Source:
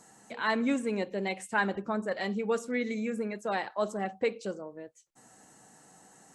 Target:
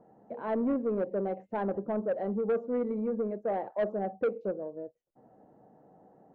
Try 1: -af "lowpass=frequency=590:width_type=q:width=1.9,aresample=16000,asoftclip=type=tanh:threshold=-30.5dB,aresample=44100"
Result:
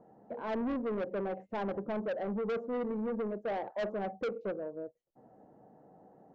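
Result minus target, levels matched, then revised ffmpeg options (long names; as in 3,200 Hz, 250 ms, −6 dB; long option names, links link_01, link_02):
soft clipping: distortion +7 dB
-af "lowpass=frequency=590:width_type=q:width=1.9,aresample=16000,asoftclip=type=tanh:threshold=-22.5dB,aresample=44100"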